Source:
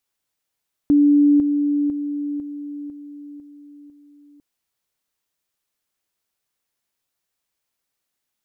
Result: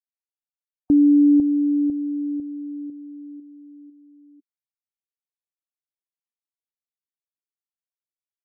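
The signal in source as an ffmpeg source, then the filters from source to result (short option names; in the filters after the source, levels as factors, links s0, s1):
-f lavfi -i "aevalsrc='pow(10,(-10.5-6*floor(t/0.5))/20)*sin(2*PI*290*t)':d=3.5:s=44100"
-af "afftdn=nr=35:nf=-40"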